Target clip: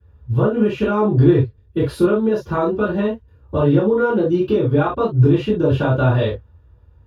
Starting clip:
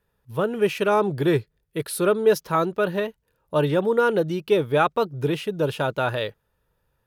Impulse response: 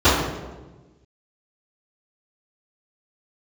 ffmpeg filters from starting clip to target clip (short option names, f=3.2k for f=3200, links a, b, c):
-filter_complex "[0:a]acompressor=threshold=-25dB:ratio=6,bass=f=250:g=12,treble=f=4k:g=-3[a];[1:a]atrim=start_sample=2205,atrim=end_sample=3528[b];[a][b]afir=irnorm=-1:irlink=0,volume=-17dB"